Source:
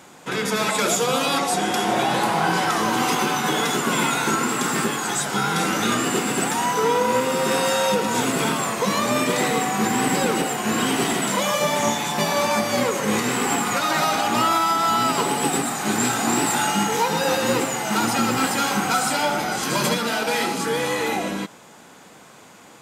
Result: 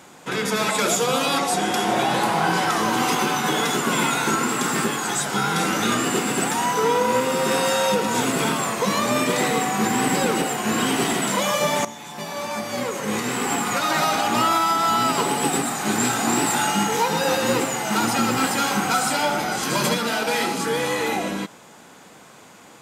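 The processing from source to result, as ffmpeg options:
-filter_complex "[0:a]asplit=2[s0][s1];[s0]atrim=end=11.85,asetpts=PTS-STARTPTS,afade=t=out:st=11.846:d=0.004:c=hsin:silence=0.158489[s2];[s1]atrim=start=11.85,asetpts=PTS-STARTPTS,afade=t=in:d=2.07:silence=0.158489[s3];[s2][s3]concat=n=2:v=0:a=1"

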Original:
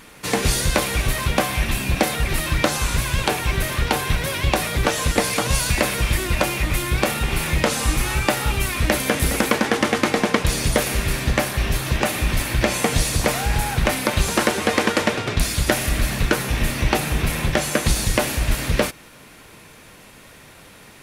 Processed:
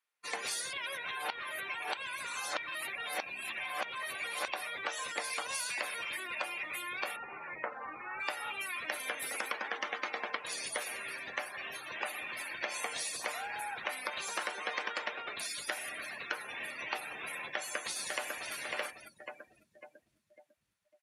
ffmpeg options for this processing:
-filter_complex "[0:a]asettb=1/sr,asplit=3[s0][s1][s2];[s0]atrim=end=7.164[s3];[s1]atrim=start=7.16:end=8.2,asetpts=PTS-STARTPTS,afade=t=in:d=0.004:c=qsin,afade=t=out:st=1.036:d=0.004:c=qsin,lowpass=1800[s4];[s2]atrim=start=8.196[s5];[s3][s4]acrossfade=d=0.004:c1=hsin:c2=qsin[s6];[s6][s5]acrossfade=d=0.004:c1=qsin:c2=hsin,asplit=2[s7][s8];[s8]afade=t=in:st=17.43:d=0.01,afade=t=out:st=18.53:d=0.01,aecho=0:1:550|1100|1650|2200|2750|3300|3850|4400:0.530884|0.318531|0.191118|0.114671|0.0688026|0.0412816|0.0247689|0.0148614[s9];[s7][s9]amix=inputs=2:normalize=0,asplit=3[s10][s11][s12];[s10]atrim=end=0.732[s13];[s11]atrim=start=0.728:end=4.482,asetpts=PTS-STARTPTS,areverse[s14];[s12]atrim=start=4.478[s15];[s13][s14]acrossfade=d=0.004:c1=hsin:c2=hsin[s16];[s16][s15]acrossfade=d=0.004:c1=hsin:c2=hsin,afftdn=nr=33:nf=-28,highpass=840,acompressor=threshold=0.0562:ratio=3,volume=0.376"

